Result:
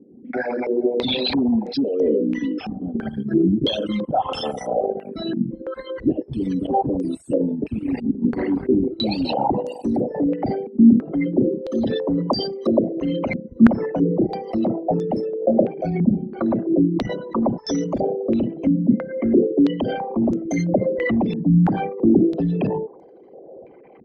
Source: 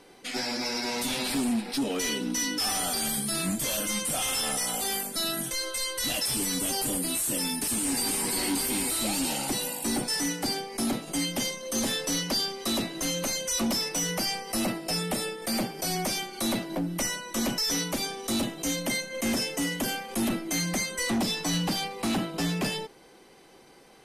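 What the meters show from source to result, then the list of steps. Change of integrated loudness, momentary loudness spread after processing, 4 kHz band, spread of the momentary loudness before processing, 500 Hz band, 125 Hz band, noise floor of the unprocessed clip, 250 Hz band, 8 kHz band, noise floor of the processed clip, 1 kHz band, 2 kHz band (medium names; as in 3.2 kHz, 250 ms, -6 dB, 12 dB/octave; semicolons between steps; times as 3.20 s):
+6.5 dB, 9 LU, -3.5 dB, 4 LU, +13.0 dB, +11.5 dB, -54 dBFS, +12.5 dB, under -20 dB, -45 dBFS, +7.0 dB, -2.5 dB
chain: resonances exaggerated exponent 3; high-pass 64 Hz; distance through air 320 m; step-sequenced low-pass 3 Hz 230–6400 Hz; trim +8 dB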